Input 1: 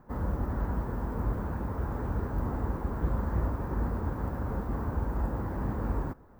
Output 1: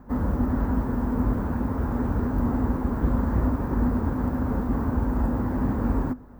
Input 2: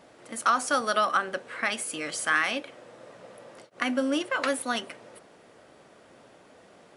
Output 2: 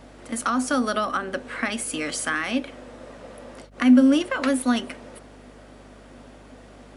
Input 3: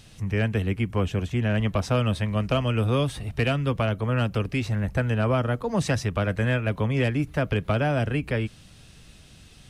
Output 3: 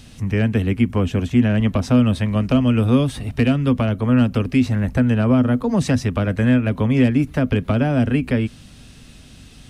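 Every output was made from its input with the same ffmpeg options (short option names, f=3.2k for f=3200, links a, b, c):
-filter_complex "[0:a]equalizer=f=250:t=o:w=0.25:g=12.5,acrossover=split=470[a][b];[b]acompressor=threshold=-31dB:ratio=2.5[c];[a][c]amix=inputs=2:normalize=0,aeval=exprs='val(0)+0.00178*(sin(2*PI*50*n/s)+sin(2*PI*2*50*n/s)/2+sin(2*PI*3*50*n/s)/3+sin(2*PI*4*50*n/s)/4+sin(2*PI*5*50*n/s)/5)':c=same,volume=5dB"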